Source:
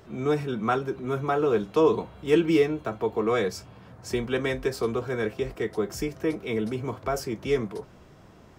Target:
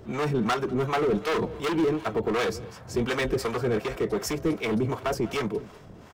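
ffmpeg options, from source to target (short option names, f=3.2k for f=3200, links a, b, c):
-filter_complex "[0:a]asplit=2[a][b];[b]adelay=320,highpass=300,lowpass=3.4k,asoftclip=type=hard:threshold=-16dB,volume=-29dB[c];[a][c]amix=inputs=2:normalize=0,volume=27dB,asoftclip=hard,volume=-27dB,atempo=1.4,asplit=2[d][e];[e]aecho=0:1:196:0.141[f];[d][f]amix=inputs=2:normalize=0,acrossover=split=580[g][h];[g]aeval=exprs='val(0)*(1-0.7/2+0.7/2*cos(2*PI*2.7*n/s))':c=same[i];[h]aeval=exprs='val(0)*(1-0.7/2-0.7/2*cos(2*PI*2.7*n/s))':c=same[j];[i][j]amix=inputs=2:normalize=0,volume=8dB"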